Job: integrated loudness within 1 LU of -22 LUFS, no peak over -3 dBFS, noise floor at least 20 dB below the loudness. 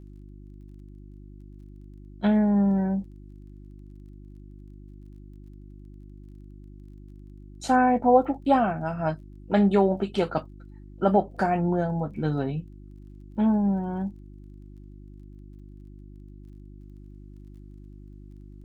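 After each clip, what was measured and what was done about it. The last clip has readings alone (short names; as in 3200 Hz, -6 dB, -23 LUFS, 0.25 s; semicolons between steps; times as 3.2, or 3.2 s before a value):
ticks 23/s; hum 50 Hz; harmonics up to 350 Hz; hum level -42 dBFS; loudness -24.5 LUFS; peak -7.5 dBFS; loudness target -22.0 LUFS
-> de-click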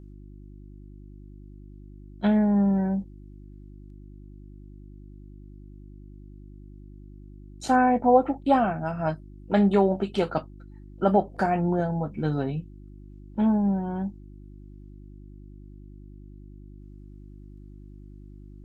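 ticks 0.054/s; hum 50 Hz; harmonics up to 350 Hz; hum level -42 dBFS
-> de-hum 50 Hz, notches 7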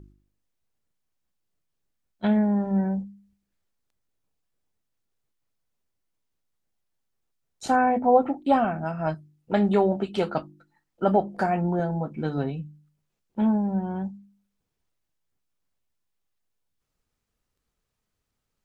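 hum none; loudness -25.0 LUFS; peak -7.5 dBFS; loudness target -22.0 LUFS
-> gain +3 dB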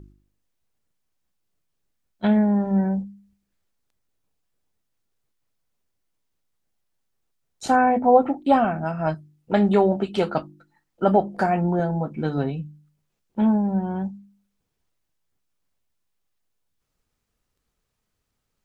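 loudness -22.0 LUFS; peak -4.5 dBFS; noise floor -78 dBFS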